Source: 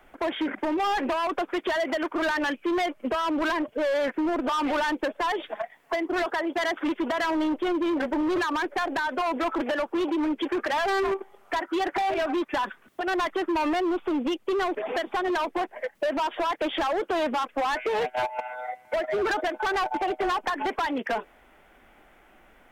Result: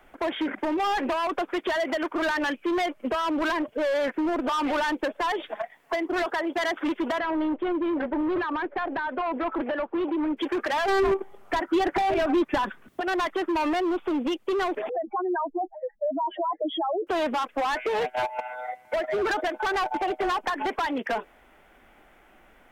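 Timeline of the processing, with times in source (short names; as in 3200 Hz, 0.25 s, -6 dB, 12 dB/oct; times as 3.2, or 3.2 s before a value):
7.19–10.37 air absorption 380 m
10.88–13 low shelf 310 Hz +10 dB
14.89–17.07 spectral contrast raised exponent 3.7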